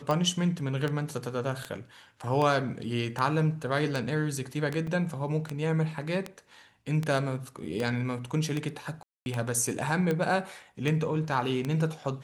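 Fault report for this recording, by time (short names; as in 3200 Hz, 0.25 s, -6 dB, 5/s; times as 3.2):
tick 78 rpm -17 dBFS
4.87 gap 4.4 ms
9.03–9.26 gap 0.231 s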